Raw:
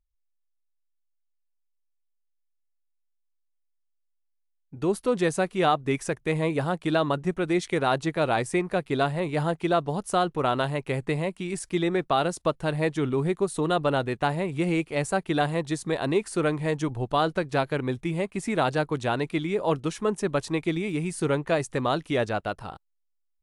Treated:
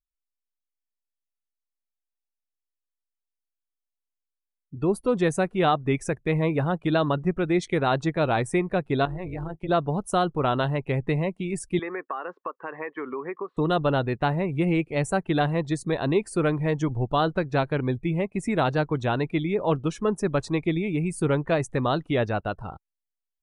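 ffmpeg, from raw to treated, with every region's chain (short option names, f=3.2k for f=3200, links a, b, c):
-filter_complex "[0:a]asettb=1/sr,asplit=3[a][b][c];[a]atrim=end=9.054[d];[b]atrim=start=9.05:end=9.69,asetpts=PTS-STARTPTS,afade=t=in:d=0.004:c=qsin,afade=t=out:st=0.636:d=0.004:c=qsin,equalizer=f=520:w=4.8:g=-5,acompressor=threshold=-29dB:ratio=3:attack=3.2:release=140:knee=1:detection=peak,tremolo=f=190:d=0.788[e];[c]atrim=start=9.686[f];[d][e]acrossfade=d=0.004:c1=hsin:c2=qsin[g];[g][f]acrossfade=d=0.004:c1=qsin:c2=hsin,asettb=1/sr,asplit=3[h][i][j];[h]atrim=end=11.794[k];[i]atrim=start=11.79:end=13.57,asetpts=PTS-STARTPTS,afade=t=in:d=0.004:c=qsin,afade=t=out:st=1.776:d=0.004:c=qsin,highpass=f=310:w=0.5412,highpass=f=310:w=1.3066,equalizer=f=330:t=q:w=4:g=-6,equalizer=f=640:t=q:w=4:g=-7,equalizer=f=1.1k:t=q:w=4:g=9,equalizer=f=1.8k:t=q:w=4:g=5,lowpass=f=2.7k:w=0.5412,lowpass=f=2.7k:w=1.3066,acompressor=threshold=-28dB:ratio=6:attack=3.2:release=140:knee=1:detection=peak[l];[j]atrim=start=13.566[m];[k][l]acrossfade=d=0.004:c1=hsin:c2=qsin[n];[n][m]acrossfade=d=0.004:c1=qsin:c2=hsin,afftdn=nr=20:nf=-43,lowshelf=f=160:g=7.5"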